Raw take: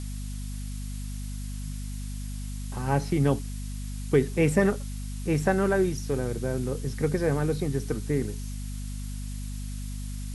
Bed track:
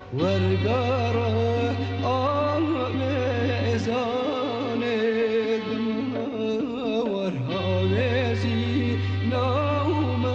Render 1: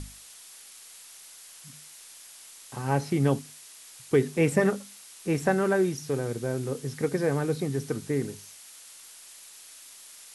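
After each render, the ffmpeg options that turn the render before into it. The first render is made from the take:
ffmpeg -i in.wav -af "bandreject=frequency=50:width_type=h:width=6,bandreject=frequency=100:width_type=h:width=6,bandreject=frequency=150:width_type=h:width=6,bandreject=frequency=200:width_type=h:width=6,bandreject=frequency=250:width_type=h:width=6" out.wav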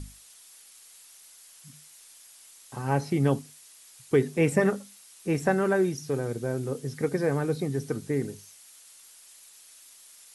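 ffmpeg -i in.wav -af "afftdn=noise_reduction=6:noise_floor=-49" out.wav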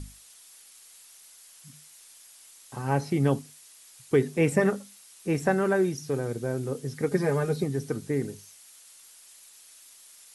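ffmpeg -i in.wav -filter_complex "[0:a]asettb=1/sr,asplit=3[link_01][link_02][link_03];[link_01]atrim=end=7.114[link_04];[link_02]atrim=start=7.11:end=7.64,asetpts=PTS-STARTPTS,afade=type=in:duration=0.004:curve=qsin,afade=type=out:start_time=0.526:duration=0.004:curve=qsin,aecho=1:1:4.9:0.77,atrim=end_sample=23373[link_05];[link_03]atrim=start=7.636[link_06];[link_04][link_05]acrossfade=duration=0.004:curve1=hsin:curve2=qsin[link_07];[link_07][link_06]acrossfade=duration=0.004:curve1=qsin:curve2=hsin" out.wav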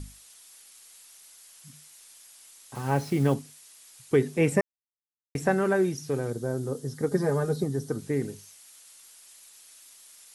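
ffmpeg -i in.wav -filter_complex "[0:a]asettb=1/sr,asplit=3[link_01][link_02][link_03];[link_01]atrim=end=2.754[link_04];[link_02]atrim=start=2.75:end=3.34,asetpts=PTS-STARTPTS,afade=type=in:duration=0.004:curve=qsin,afade=type=out:start_time=0.586:duration=0.004:curve=qsin,acrusher=bits=6:mix=0:aa=0.5[link_05];[link_03]atrim=start=3.336[link_06];[link_04][link_05]acrossfade=duration=0.004:curve1=hsin:curve2=qsin[link_07];[link_07][link_06]acrossfade=duration=0.004:curve1=qsin:curve2=hsin,asettb=1/sr,asplit=3[link_08][link_09][link_10];[link_08]atrim=end=6.304[link_11];[link_09]atrim=start=6.3:end=7.99,asetpts=PTS-STARTPTS,afade=type=in:duration=0.004:curve=qsin,afade=type=out:start_time=1.686:duration=0.004:curve=qsin,equalizer=frequency=2400:width_type=o:width=0.58:gain=-12.5[link_12];[link_10]atrim=start=7.986[link_13];[link_11][link_12]acrossfade=duration=0.004:curve1=hsin:curve2=qsin[link_14];[link_14][link_13]acrossfade=duration=0.004:curve1=qsin:curve2=hsin,asplit=3[link_15][link_16][link_17];[link_15]atrim=end=4.61,asetpts=PTS-STARTPTS,afade=type=out:start_time=4.606:duration=0.004:curve=hsin[link_18];[link_16]atrim=start=4.61:end=5.35,asetpts=PTS-STARTPTS,volume=0[link_19];[link_17]atrim=start=5.35,asetpts=PTS-STARTPTS,afade=type=in:duration=0.004:curve=hsin[link_20];[link_18][link_19][link_20]concat=n=3:v=0:a=1" out.wav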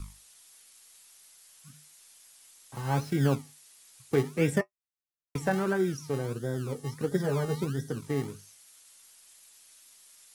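ffmpeg -i in.wav -filter_complex "[0:a]acrossover=split=200[link_01][link_02];[link_01]acrusher=samples=35:mix=1:aa=0.000001:lfo=1:lforange=21:lforate=1.5[link_03];[link_02]flanger=delay=5.8:depth=4.7:regen=-49:speed=0.35:shape=triangular[link_04];[link_03][link_04]amix=inputs=2:normalize=0" out.wav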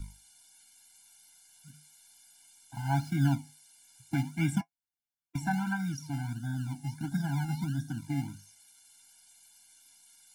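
ffmpeg -i in.wav -af "afftfilt=real='re*eq(mod(floor(b*sr/1024/340),2),0)':imag='im*eq(mod(floor(b*sr/1024/340),2),0)':win_size=1024:overlap=0.75" out.wav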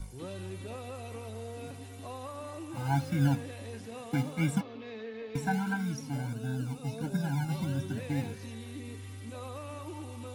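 ffmpeg -i in.wav -i bed.wav -filter_complex "[1:a]volume=-18.5dB[link_01];[0:a][link_01]amix=inputs=2:normalize=0" out.wav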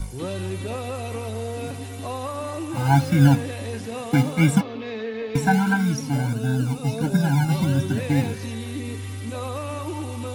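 ffmpeg -i in.wav -af "volume=11.5dB" out.wav

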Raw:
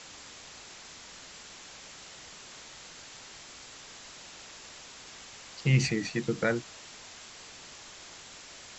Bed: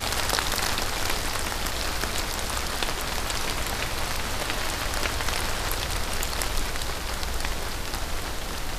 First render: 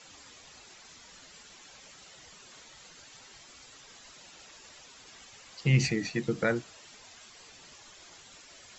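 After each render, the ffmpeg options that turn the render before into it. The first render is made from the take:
ffmpeg -i in.wav -af "afftdn=noise_reduction=10:noise_floor=-49" out.wav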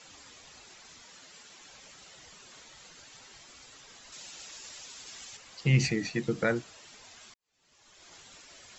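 ffmpeg -i in.wav -filter_complex "[0:a]asettb=1/sr,asplit=3[link_01][link_02][link_03];[link_01]atrim=end=1.024[link_04];[link_02]atrim=start=1.02:end=1.6,asetpts=PTS-STARTPTS,afade=type=in:duration=0.004:curve=qsin,afade=type=out:start_time=0.576:duration=0.004:curve=qsin,highpass=frequency=160:poles=1[link_05];[link_03]atrim=start=1.596[link_06];[link_04][link_05]acrossfade=duration=0.004:curve1=hsin:curve2=qsin[link_07];[link_07][link_06]acrossfade=duration=0.004:curve1=qsin:curve2=hsin,asettb=1/sr,asplit=3[link_08][link_09][link_10];[link_08]atrim=end=4.124[link_11];[link_09]atrim=start=4.12:end=5.37,asetpts=PTS-STARTPTS,afade=type=in:duration=0.004:curve=qsin,afade=type=out:start_time=1.246:duration=0.004:curve=qsin,highshelf=frequency=3100:gain=9.5[link_12];[link_10]atrim=start=5.366[link_13];[link_11][link_12]acrossfade=duration=0.004:curve1=hsin:curve2=qsin[link_14];[link_14][link_13]acrossfade=duration=0.004:curve1=qsin:curve2=hsin,asplit=2[link_15][link_16];[link_15]atrim=end=7.34,asetpts=PTS-STARTPTS,afade=type=out:start_time=7.336:duration=0.004:curve=hsin[link_17];[link_16]atrim=start=7.34,asetpts=PTS-STARTPTS,afade=type=in:duration=0.81:curve=qua[link_18];[link_17][link_18]concat=n=2:v=0:a=1" out.wav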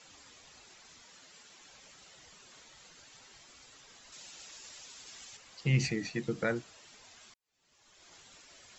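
ffmpeg -i in.wav -af "volume=-4dB" out.wav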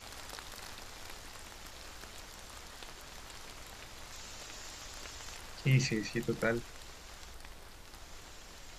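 ffmpeg -i in.wav -i bed.wav -filter_complex "[1:a]volume=-21.5dB[link_01];[0:a][link_01]amix=inputs=2:normalize=0" out.wav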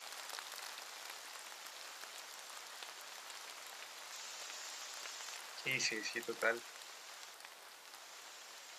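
ffmpeg -i in.wav -af "highpass=620" out.wav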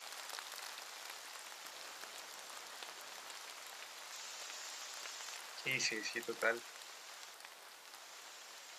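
ffmpeg -i in.wav -filter_complex "[0:a]asettb=1/sr,asplit=3[link_01][link_02][link_03];[link_01]atrim=end=1.644[link_04];[link_02]atrim=start=1.64:end=3.34,asetpts=PTS-STARTPTS,afade=type=in:duration=0.004:curve=qsin,afade=type=out:start_time=1.696:duration=0.004:curve=qsin,lowshelf=frequency=410:gain=6[link_05];[link_03]atrim=start=3.336[link_06];[link_04][link_05]acrossfade=duration=0.004:curve1=hsin:curve2=qsin[link_07];[link_07][link_06]acrossfade=duration=0.004:curve1=qsin:curve2=hsin" out.wav

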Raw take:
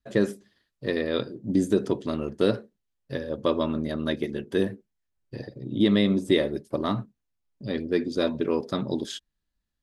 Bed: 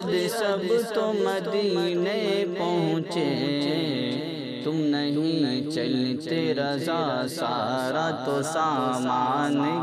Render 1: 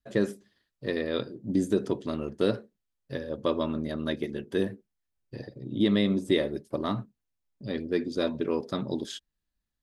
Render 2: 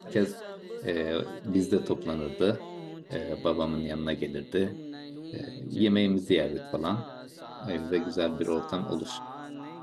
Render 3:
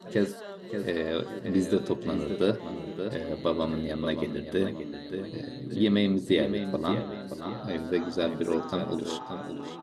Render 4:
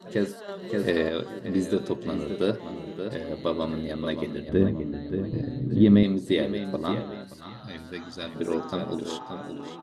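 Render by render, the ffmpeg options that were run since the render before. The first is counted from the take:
ffmpeg -i in.wav -af "volume=-3dB" out.wav
ffmpeg -i in.wav -i bed.wav -filter_complex "[1:a]volume=-17dB[link_01];[0:a][link_01]amix=inputs=2:normalize=0" out.wav
ffmpeg -i in.wav -filter_complex "[0:a]asplit=2[link_01][link_02];[link_02]adelay=576,lowpass=frequency=4100:poles=1,volume=-8dB,asplit=2[link_03][link_04];[link_04]adelay=576,lowpass=frequency=4100:poles=1,volume=0.38,asplit=2[link_05][link_06];[link_06]adelay=576,lowpass=frequency=4100:poles=1,volume=0.38,asplit=2[link_07][link_08];[link_08]adelay=576,lowpass=frequency=4100:poles=1,volume=0.38[link_09];[link_01][link_03][link_05][link_07][link_09]amix=inputs=5:normalize=0" out.wav
ffmpeg -i in.wav -filter_complex "[0:a]asettb=1/sr,asplit=3[link_01][link_02][link_03];[link_01]atrim=end=0.484[link_04];[link_02]atrim=start=0.48:end=1.09,asetpts=PTS-STARTPTS,afade=type=in:duration=0.004:curve=qsin,afade=type=out:start_time=0.606:duration=0.004:curve=qsin,acontrast=36[link_05];[link_03]atrim=start=1.086[link_06];[link_04][link_05]acrossfade=duration=0.004:curve1=hsin:curve2=qsin[link_07];[link_07][link_06]acrossfade=duration=0.004:curve1=qsin:curve2=hsin,asettb=1/sr,asplit=3[link_08][link_09][link_10];[link_08]atrim=end=4.494[link_11];[link_09]atrim=start=4.49:end=6.03,asetpts=PTS-STARTPTS,afade=type=in:duration=0.004:curve=qsin,afade=type=out:start_time=1.536:duration=0.004:curve=qsin,aemphasis=mode=reproduction:type=riaa[link_12];[link_10]atrim=start=6.026[link_13];[link_11][link_12]acrossfade=duration=0.004:curve1=hsin:curve2=qsin[link_14];[link_14][link_13]acrossfade=duration=0.004:curve1=qsin:curve2=hsin,asettb=1/sr,asplit=3[link_15][link_16][link_17];[link_15]atrim=end=7.244[link_18];[link_16]atrim=start=7.24:end=8.36,asetpts=PTS-STARTPTS,afade=type=in:duration=0.004:curve=qsin,afade=type=out:start_time=1.116:duration=0.004:curve=qsin,equalizer=frequency=420:width_type=o:width=2.1:gain=-12.5[link_19];[link_17]atrim=start=8.356[link_20];[link_18][link_19]acrossfade=duration=0.004:curve1=hsin:curve2=qsin[link_21];[link_21][link_20]acrossfade=duration=0.004:curve1=qsin:curve2=hsin" out.wav

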